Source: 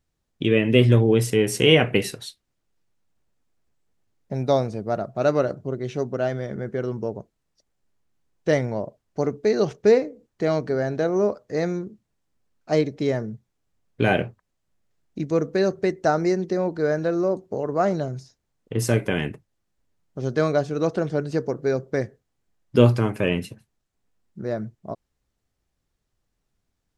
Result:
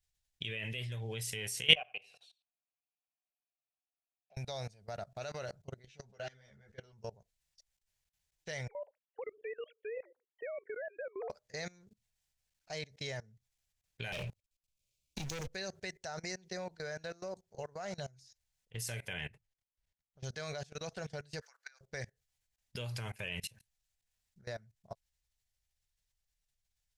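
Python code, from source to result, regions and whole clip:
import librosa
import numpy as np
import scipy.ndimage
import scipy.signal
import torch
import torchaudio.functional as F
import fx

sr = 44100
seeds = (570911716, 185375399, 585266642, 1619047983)

y = fx.chain(x, sr, fx.vowel_filter(vowel='a'),
    fx.echo_single(ms=90, db=-12.5),
    fx.band_squash(depth_pct=40), at=(1.75, 4.37))
y = fx.chain(y, sr, fx.lowpass(hz=8200.0, slope=12),
    fx.ensemble(), at=(5.86, 6.93))
y = fx.chain(y, sr, fx.sine_speech(),
    fx.band_squash(depth_pct=40), at=(8.68, 11.3))
y = fx.chain(y, sr, fx.cheby1_bandstop(low_hz=610.0, high_hz=2300.0, order=4),
    fx.leveller(passes=3),
    fx.band_squash(depth_pct=40), at=(14.12, 15.47))
y = fx.chain(y, sr, fx.quant_float(bits=8),
    fx.lowpass(hz=2900.0, slope=6), at=(19.13, 20.24))
y = fx.chain(y, sr, fx.ladder_highpass(hz=1100.0, resonance_pct=45),
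    fx.band_squash(depth_pct=100), at=(21.41, 21.81))
y = fx.tone_stack(y, sr, knobs='10-0-10')
y = fx.level_steps(y, sr, step_db=22)
y = fx.peak_eq(y, sr, hz=1200.0, db=-9.0, octaves=0.53)
y = y * 10.0 ** (4.5 / 20.0)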